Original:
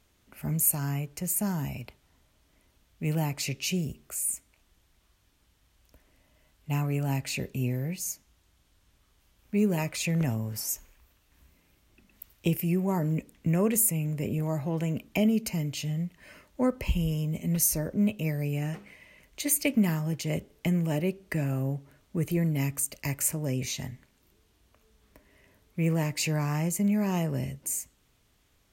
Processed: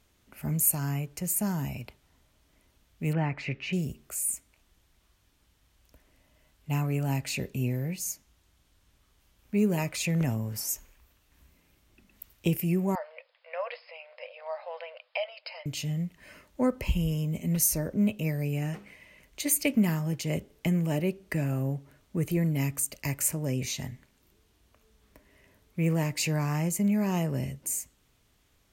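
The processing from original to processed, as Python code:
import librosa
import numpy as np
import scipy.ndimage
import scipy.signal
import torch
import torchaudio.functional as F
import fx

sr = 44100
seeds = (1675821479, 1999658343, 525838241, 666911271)

y = fx.lowpass_res(x, sr, hz=1900.0, q=2.1, at=(3.13, 3.73))
y = fx.brickwall_bandpass(y, sr, low_hz=490.0, high_hz=5200.0, at=(12.95, 15.66))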